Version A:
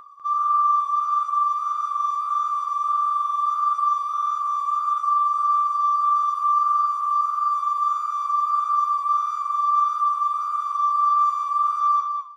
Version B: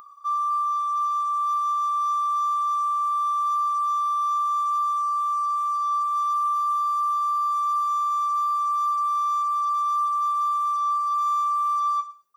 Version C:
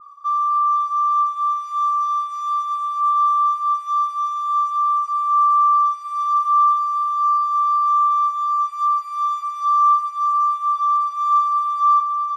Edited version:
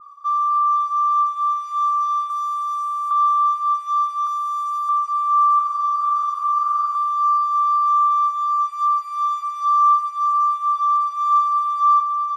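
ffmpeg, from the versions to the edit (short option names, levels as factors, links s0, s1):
-filter_complex "[1:a]asplit=2[s0][s1];[2:a]asplit=4[s2][s3][s4][s5];[s2]atrim=end=2.302[s6];[s0]atrim=start=2.298:end=3.112[s7];[s3]atrim=start=3.108:end=4.272[s8];[s1]atrim=start=4.268:end=4.892[s9];[s4]atrim=start=4.888:end=5.592[s10];[0:a]atrim=start=5.588:end=6.952[s11];[s5]atrim=start=6.948[s12];[s6][s7]acrossfade=d=0.004:c1=hsin:c2=hsin[s13];[s13][s8]acrossfade=d=0.004:c1=hsin:c2=hsin[s14];[s14][s9]acrossfade=d=0.004:c1=hsin:c2=hsin[s15];[s15][s10]acrossfade=d=0.004:c1=hsin:c2=hsin[s16];[s16][s11]acrossfade=d=0.004:c1=hsin:c2=hsin[s17];[s17][s12]acrossfade=d=0.004:c1=hsin:c2=hsin"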